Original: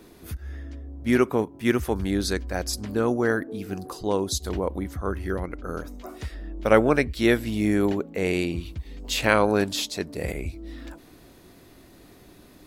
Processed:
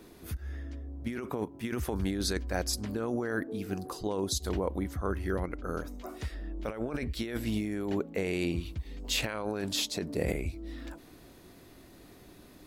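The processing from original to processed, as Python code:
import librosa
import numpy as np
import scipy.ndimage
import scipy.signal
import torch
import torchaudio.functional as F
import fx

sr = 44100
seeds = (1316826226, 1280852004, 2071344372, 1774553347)

y = fx.peak_eq(x, sr, hz=250.0, db=5.0, octaves=3.0, at=(9.94, 10.36))
y = fx.over_compress(y, sr, threshold_db=-26.0, ratio=-1.0)
y = y * librosa.db_to_amplitude(-5.5)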